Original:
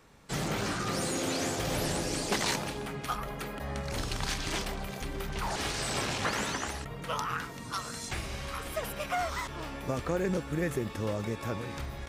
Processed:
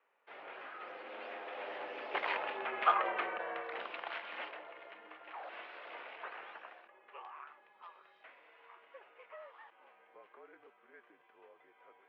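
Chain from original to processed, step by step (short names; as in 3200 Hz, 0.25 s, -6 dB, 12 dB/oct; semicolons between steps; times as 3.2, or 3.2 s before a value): Doppler pass-by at 3, 26 m/s, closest 7.2 m; mistuned SSB -52 Hz 540–2900 Hz; gain +7.5 dB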